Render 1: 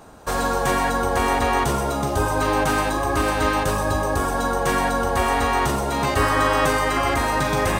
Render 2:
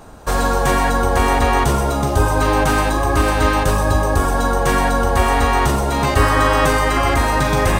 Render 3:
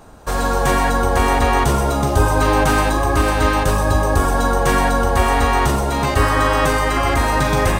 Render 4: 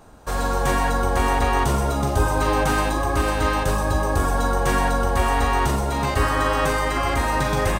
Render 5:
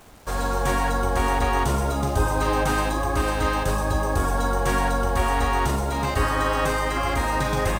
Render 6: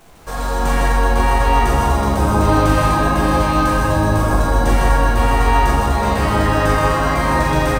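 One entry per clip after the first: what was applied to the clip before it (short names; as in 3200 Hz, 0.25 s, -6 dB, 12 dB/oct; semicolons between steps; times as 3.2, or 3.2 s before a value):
low shelf 78 Hz +10 dB; gain +3.5 dB
AGC; gain -3 dB
doubler 44 ms -12 dB; gain -5 dB
requantised 8-bit, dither none; gain -2 dB
echo 0.155 s -4 dB; shoebox room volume 210 m³, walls hard, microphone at 0.7 m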